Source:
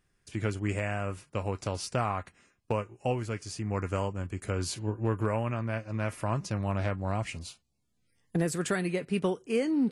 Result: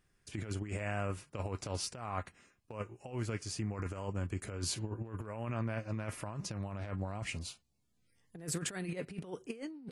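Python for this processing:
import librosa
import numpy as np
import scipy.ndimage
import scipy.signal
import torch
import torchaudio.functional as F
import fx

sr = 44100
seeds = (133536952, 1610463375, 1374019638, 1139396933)

y = fx.over_compress(x, sr, threshold_db=-33.0, ratio=-0.5)
y = y * 10.0 ** (-4.5 / 20.0)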